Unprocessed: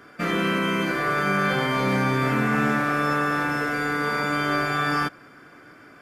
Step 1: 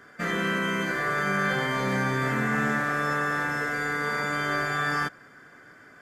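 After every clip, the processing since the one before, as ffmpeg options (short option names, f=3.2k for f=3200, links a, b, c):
-af "superequalizer=6b=0.631:11b=1.78:12b=0.708:15b=1.78,volume=-4dB"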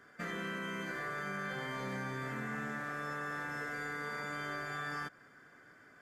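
-af "acompressor=threshold=-29dB:ratio=3,volume=-8.5dB"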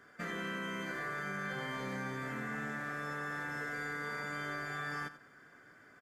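-af "aecho=1:1:88:0.2"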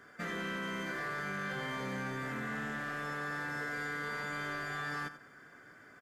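-af "asoftclip=type=tanh:threshold=-34dB,volume=3dB"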